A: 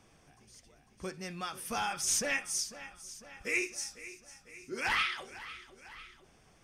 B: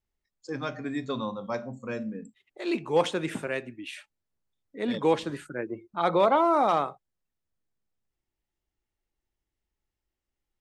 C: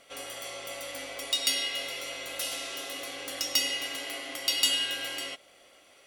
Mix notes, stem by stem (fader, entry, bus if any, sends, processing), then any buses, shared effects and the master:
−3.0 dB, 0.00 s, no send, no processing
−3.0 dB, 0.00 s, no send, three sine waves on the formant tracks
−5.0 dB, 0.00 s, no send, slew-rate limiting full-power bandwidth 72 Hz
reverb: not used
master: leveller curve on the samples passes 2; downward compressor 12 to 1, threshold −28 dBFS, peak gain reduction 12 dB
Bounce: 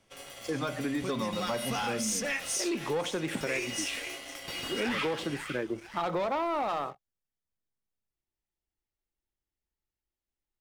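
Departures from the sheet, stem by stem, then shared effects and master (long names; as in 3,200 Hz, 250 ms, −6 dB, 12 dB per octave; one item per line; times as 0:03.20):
stem B: missing three sine waves on the formant tracks
stem C −5.0 dB → −11.0 dB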